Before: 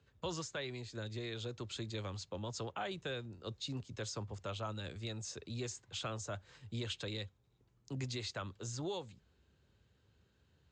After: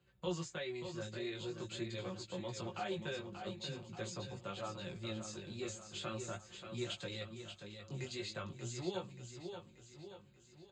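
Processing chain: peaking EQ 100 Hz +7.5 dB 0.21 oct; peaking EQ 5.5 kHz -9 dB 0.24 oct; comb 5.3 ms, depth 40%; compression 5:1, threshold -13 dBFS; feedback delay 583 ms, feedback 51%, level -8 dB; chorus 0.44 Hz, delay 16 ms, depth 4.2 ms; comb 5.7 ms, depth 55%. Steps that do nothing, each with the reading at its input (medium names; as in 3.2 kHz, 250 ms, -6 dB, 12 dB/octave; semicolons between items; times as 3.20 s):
compression, threshold -13 dBFS: peak at its input -27.0 dBFS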